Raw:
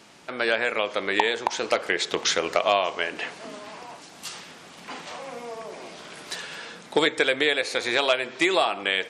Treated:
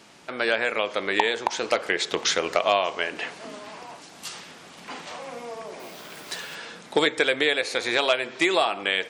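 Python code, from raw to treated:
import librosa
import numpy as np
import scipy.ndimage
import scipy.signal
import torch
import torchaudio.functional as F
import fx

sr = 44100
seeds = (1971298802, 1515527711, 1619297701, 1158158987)

y = fx.dmg_noise_colour(x, sr, seeds[0], colour='blue', level_db=-52.0, at=(5.79, 6.54), fade=0.02)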